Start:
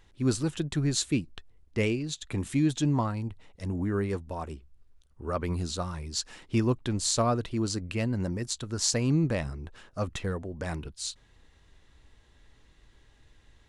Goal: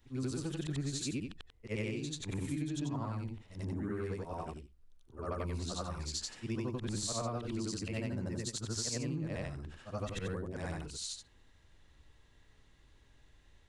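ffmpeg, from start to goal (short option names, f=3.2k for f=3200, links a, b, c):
-af "afftfilt=real='re':imag='-im':win_size=8192:overlap=0.75,acompressor=threshold=-33dB:ratio=10"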